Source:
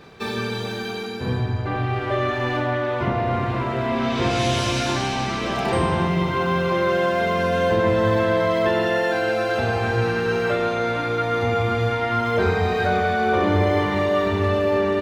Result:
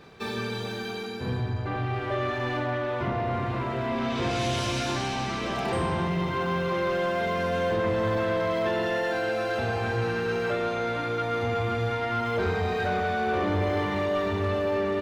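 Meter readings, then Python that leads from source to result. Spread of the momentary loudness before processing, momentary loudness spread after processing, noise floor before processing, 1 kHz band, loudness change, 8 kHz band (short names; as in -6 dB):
5 LU, 4 LU, -28 dBFS, -6.0 dB, -6.0 dB, -5.5 dB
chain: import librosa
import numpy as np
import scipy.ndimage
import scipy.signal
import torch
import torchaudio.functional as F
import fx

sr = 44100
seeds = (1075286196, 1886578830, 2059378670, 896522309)

y = 10.0 ** (-15.0 / 20.0) * np.tanh(x / 10.0 ** (-15.0 / 20.0))
y = F.gain(torch.from_numpy(y), -4.5).numpy()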